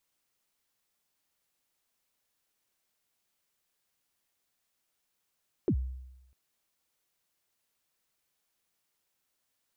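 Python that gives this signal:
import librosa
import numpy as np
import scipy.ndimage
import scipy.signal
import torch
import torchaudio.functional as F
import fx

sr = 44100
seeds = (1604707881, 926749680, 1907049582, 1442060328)

y = fx.drum_kick(sr, seeds[0], length_s=0.65, level_db=-21.5, start_hz=440.0, end_hz=64.0, sweep_ms=74.0, decay_s=0.94, click=False)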